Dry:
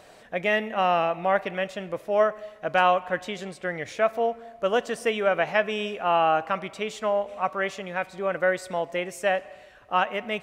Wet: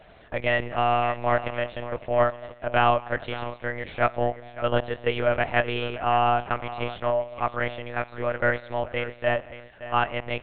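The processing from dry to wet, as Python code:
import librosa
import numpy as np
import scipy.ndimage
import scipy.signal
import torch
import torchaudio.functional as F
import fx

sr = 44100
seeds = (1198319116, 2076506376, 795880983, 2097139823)

p1 = x + fx.echo_feedback(x, sr, ms=566, feedback_pct=15, wet_db=-14.5, dry=0)
y = fx.lpc_monotone(p1, sr, seeds[0], pitch_hz=120.0, order=10)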